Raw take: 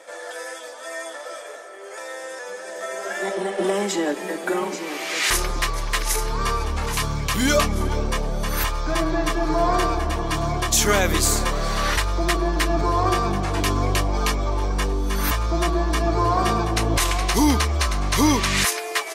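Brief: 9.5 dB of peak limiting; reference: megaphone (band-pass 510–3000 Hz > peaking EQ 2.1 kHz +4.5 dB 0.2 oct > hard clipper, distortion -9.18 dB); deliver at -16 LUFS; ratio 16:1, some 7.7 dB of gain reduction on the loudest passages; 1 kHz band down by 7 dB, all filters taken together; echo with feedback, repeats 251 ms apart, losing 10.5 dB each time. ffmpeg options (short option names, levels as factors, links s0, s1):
-af "equalizer=f=1000:t=o:g=-8.5,acompressor=threshold=0.0794:ratio=16,alimiter=limit=0.0891:level=0:latency=1,highpass=510,lowpass=3000,equalizer=f=2100:t=o:w=0.2:g=4.5,aecho=1:1:251|502|753:0.299|0.0896|0.0269,asoftclip=type=hard:threshold=0.0168,volume=13.3"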